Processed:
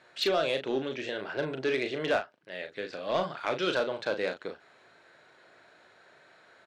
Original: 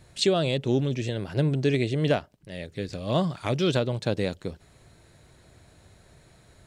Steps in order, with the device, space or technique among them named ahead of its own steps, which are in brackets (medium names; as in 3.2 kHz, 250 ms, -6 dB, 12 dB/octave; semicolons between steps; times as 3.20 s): intercom (band-pass 470–3600 Hz; peaking EQ 1.5 kHz +7 dB 0.46 oct; saturation -20.5 dBFS, distortion -15 dB; doubling 38 ms -7 dB); trim +1 dB